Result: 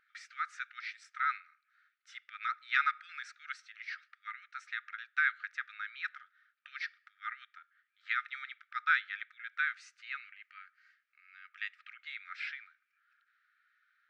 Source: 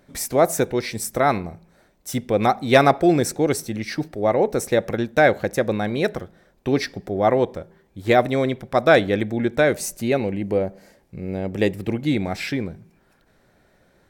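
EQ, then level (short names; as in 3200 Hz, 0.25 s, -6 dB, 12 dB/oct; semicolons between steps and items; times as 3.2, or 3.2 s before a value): brick-wall FIR high-pass 1200 Hz; air absorption 66 m; tape spacing loss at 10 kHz 37 dB; 0.0 dB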